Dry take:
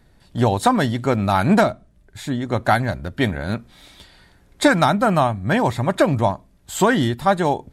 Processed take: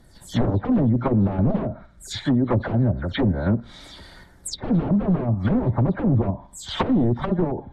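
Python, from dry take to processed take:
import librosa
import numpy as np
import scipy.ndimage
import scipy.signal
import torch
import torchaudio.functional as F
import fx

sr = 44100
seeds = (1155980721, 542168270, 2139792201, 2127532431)

p1 = fx.spec_delay(x, sr, highs='early', ms=155)
p2 = fx.peak_eq(p1, sr, hz=2600.0, db=-11.5, octaves=0.27)
p3 = p2 + fx.echo_thinned(p2, sr, ms=65, feedback_pct=54, hz=860.0, wet_db=-19.0, dry=0)
p4 = 10.0 ** (-17.0 / 20.0) * (np.abs((p3 / 10.0 ** (-17.0 / 20.0) + 3.0) % 4.0 - 2.0) - 1.0)
p5 = fx.dynamic_eq(p4, sr, hz=3800.0, q=1.6, threshold_db=-43.0, ratio=4.0, max_db=7)
p6 = fx.env_lowpass_down(p5, sr, base_hz=420.0, full_db=-19.5)
p7 = fx.level_steps(p6, sr, step_db=13)
y = p6 + F.gain(torch.from_numpy(p7), 1.5).numpy()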